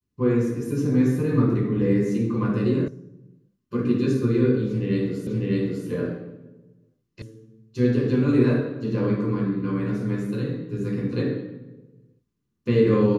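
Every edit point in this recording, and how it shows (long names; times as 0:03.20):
0:02.88: cut off before it has died away
0:05.27: the same again, the last 0.6 s
0:07.22: cut off before it has died away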